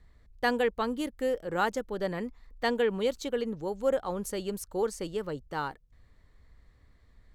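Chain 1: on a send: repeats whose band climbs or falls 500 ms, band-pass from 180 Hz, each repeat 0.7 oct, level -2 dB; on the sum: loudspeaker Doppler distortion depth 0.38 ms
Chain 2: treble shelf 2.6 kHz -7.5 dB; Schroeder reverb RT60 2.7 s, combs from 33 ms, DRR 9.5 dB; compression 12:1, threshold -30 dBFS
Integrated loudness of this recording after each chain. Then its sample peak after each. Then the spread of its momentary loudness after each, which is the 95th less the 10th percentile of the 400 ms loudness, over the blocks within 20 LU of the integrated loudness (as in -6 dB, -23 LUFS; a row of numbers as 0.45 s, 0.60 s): -31.5 LUFS, -36.5 LUFS; -14.0 dBFS, -20.0 dBFS; 12 LU, 6 LU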